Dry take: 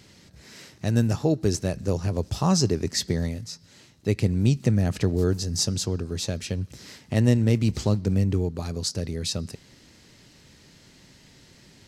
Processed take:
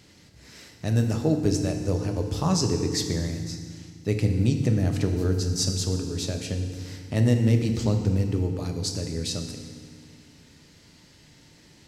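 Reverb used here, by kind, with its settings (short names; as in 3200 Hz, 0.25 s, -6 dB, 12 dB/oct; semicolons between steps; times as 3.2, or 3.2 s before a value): FDN reverb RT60 1.8 s, low-frequency decay 1.45×, high-frequency decay 0.95×, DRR 4 dB; gain -2.5 dB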